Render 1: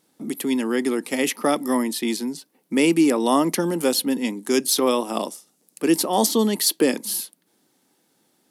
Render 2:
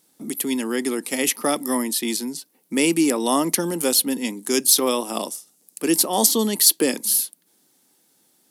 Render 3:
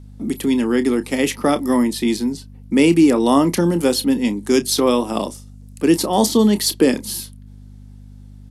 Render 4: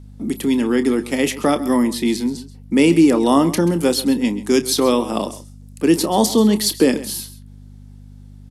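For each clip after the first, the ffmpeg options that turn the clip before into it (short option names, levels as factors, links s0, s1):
-af "highshelf=f=4500:g=10.5,volume=0.794"
-filter_complex "[0:a]aemphasis=mode=reproduction:type=bsi,aeval=exprs='val(0)+0.00891*(sin(2*PI*50*n/s)+sin(2*PI*2*50*n/s)/2+sin(2*PI*3*50*n/s)/3+sin(2*PI*4*50*n/s)/4+sin(2*PI*5*50*n/s)/5)':c=same,asplit=2[s0][s1];[s1]adelay=29,volume=0.237[s2];[s0][s2]amix=inputs=2:normalize=0,volume=1.5"
-af "aecho=1:1:133:0.158"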